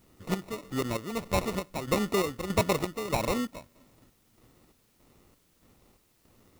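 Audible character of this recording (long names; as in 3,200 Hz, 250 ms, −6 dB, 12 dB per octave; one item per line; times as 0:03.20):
aliases and images of a low sample rate 1,600 Hz, jitter 0%
chopped level 1.6 Hz, depth 65%, duty 55%
a quantiser's noise floor 12 bits, dither triangular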